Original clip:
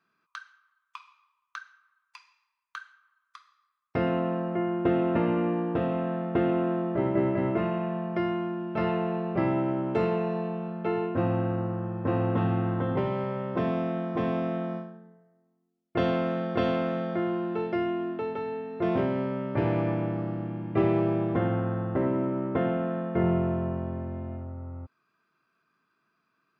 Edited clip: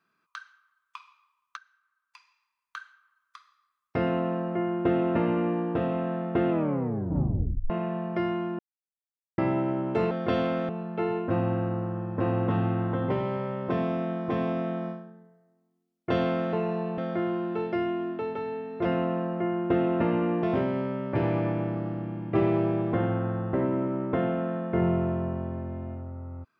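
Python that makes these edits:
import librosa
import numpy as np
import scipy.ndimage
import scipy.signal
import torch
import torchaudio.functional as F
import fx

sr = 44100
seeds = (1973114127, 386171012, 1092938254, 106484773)

y = fx.edit(x, sr, fx.fade_in_from(start_s=1.57, length_s=1.19, floor_db=-12.5),
    fx.duplicate(start_s=4.0, length_s=1.58, to_s=18.85),
    fx.tape_stop(start_s=6.5, length_s=1.2),
    fx.silence(start_s=8.59, length_s=0.79),
    fx.swap(start_s=10.11, length_s=0.45, other_s=16.4, other_length_s=0.58), tone=tone)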